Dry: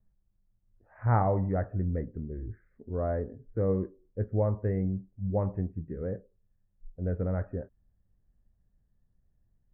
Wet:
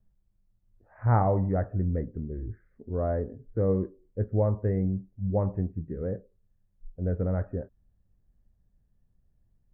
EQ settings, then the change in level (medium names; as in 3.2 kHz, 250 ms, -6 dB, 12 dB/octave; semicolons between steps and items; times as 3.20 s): treble shelf 2 kHz -7 dB; +2.5 dB